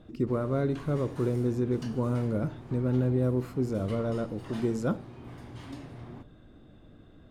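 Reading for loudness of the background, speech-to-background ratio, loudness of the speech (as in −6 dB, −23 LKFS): −45.0 LKFS, 15.0 dB, −30.0 LKFS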